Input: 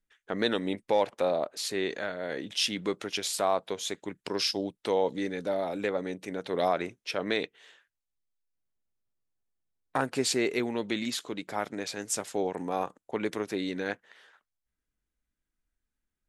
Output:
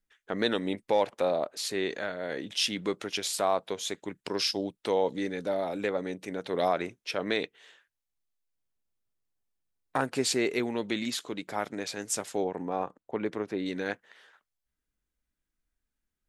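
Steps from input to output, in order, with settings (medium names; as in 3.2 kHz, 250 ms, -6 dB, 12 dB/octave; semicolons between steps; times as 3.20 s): 12.44–13.66 s: low-pass 1.6 kHz 6 dB/octave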